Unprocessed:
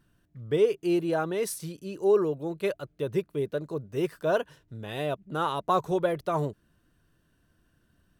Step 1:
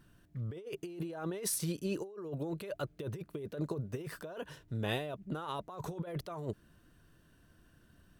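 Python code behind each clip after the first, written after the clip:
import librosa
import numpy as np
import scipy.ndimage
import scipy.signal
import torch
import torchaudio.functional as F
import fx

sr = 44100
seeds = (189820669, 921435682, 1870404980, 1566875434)

y = fx.over_compress(x, sr, threshold_db=-36.0, ratio=-1.0)
y = y * 10.0 ** (-3.5 / 20.0)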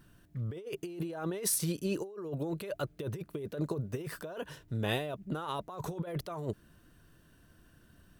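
y = fx.high_shelf(x, sr, hz=10000.0, db=4.0)
y = y * 10.0 ** (2.5 / 20.0)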